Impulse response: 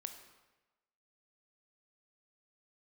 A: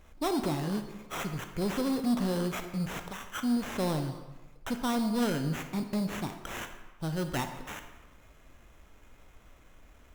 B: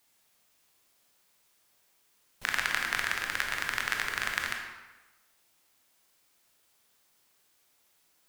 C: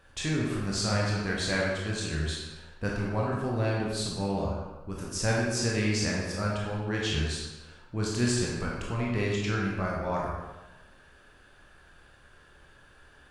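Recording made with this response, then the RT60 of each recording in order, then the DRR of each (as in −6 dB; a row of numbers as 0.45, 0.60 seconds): A; 1.1, 1.1, 1.1 seconds; 7.0, 1.5, −4.0 decibels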